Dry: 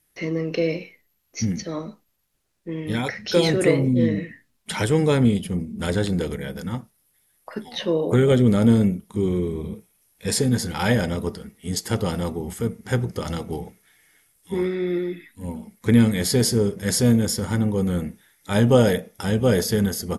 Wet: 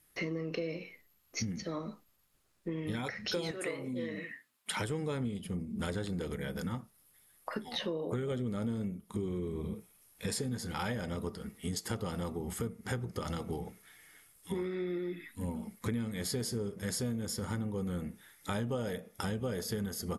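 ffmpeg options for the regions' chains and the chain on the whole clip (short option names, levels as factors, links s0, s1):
-filter_complex "[0:a]asettb=1/sr,asplit=3[s0][s1][s2];[s0]atrim=end=3.514[s3];[s1]atrim=start=3.51:end=4.77,asetpts=PTS-STARTPTS,afade=t=in:d=0.004:c=qsin,afade=t=out:st=1.256:d=0.004:c=qsin,highpass=f=920:p=1,equalizer=f=5600:w=1.3:g=-3.5[s4];[s2]atrim=start=4.766[s5];[s3][s4]acrossfade=d=0.004:c1=hsin:c2=qsin[s6];[s6][s5]acrossfade=d=0.004:c1=qsin:c2=hsin,equalizer=f=1200:t=o:w=0.38:g=4.5,bandreject=f=5900:w=20,acompressor=threshold=0.02:ratio=6"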